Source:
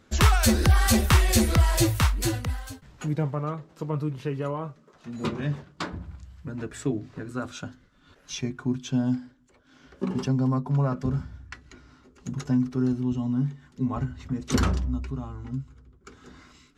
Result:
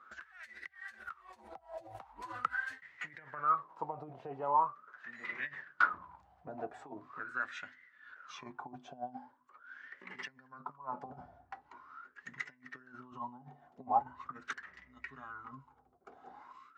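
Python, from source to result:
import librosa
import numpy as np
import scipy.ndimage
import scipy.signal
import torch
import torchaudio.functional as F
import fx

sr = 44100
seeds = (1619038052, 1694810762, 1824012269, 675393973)

y = fx.over_compress(x, sr, threshold_db=-29.0, ratio=-0.5)
y = fx.wah_lfo(y, sr, hz=0.42, low_hz=710.0, high_hz=2000.0, q=15.0)
y = F.gain(torch.from_numpy(y), 12.0).numpy()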